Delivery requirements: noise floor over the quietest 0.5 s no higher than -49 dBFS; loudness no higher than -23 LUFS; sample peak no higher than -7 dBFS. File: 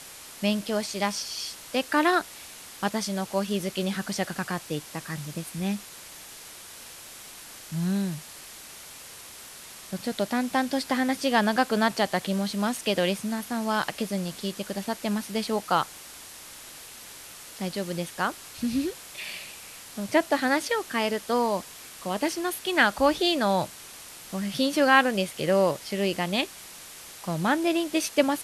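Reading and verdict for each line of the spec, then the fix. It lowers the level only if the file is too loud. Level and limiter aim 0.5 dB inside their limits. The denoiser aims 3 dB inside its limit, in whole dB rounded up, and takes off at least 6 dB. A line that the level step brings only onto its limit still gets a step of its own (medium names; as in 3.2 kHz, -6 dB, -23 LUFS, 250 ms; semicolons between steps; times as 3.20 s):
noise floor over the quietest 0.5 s -45 dBFS: fail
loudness -27.0 LUFS: pass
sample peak -6.0 dBFS: fail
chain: noise reduction 7 dB, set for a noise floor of -45 dBFS; peak limiter -7.5 dBFS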